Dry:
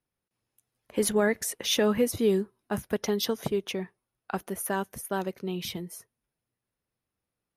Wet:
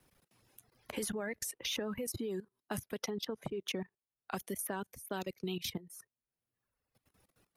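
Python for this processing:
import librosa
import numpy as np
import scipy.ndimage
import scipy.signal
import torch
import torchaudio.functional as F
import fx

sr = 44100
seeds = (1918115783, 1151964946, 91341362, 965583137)

y = fx.lowpass(x, sr, hz=2200.0, slope=6, at=(3.1, 3.66))
y = fx.dereverb_blind(y, sr, rt60_s=1.1)
y = fx.level_steps(y, sr, step_db=18)
y = fx.vibrato(y, sr, rate_hz=7.1, depth_cents=39.0)
y = fx.band_squash(y, sr, depth_pct=70)
y = y * 10.0 ** (-1.0 / 20.0)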